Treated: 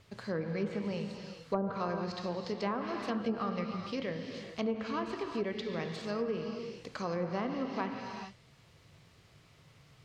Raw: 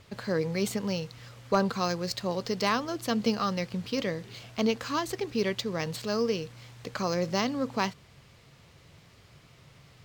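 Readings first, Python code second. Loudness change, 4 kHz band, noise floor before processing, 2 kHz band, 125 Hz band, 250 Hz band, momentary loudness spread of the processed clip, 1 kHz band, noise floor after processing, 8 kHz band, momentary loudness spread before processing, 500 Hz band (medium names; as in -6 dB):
-6.0 dB, -10.5 dB, -57 dBFS, -7.0 dB, -5.5 dB, -5.0 dB, 7 LU, -5.5 dB, -62 dBFS, -17.0 dB, 7 LU, -5.0 dB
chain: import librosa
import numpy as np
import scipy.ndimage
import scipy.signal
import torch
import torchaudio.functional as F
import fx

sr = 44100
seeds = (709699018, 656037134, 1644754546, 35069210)

y = fx.rev_gated(x, sr, seeds[0], gate_ms=460, shape='flat', drr_db=4.0)
y = fx.env_lowpass_down(y, sr, base_hz=410.0, full_db=-18.0)
y = y * librosa.db_to_amplitude(-6.5)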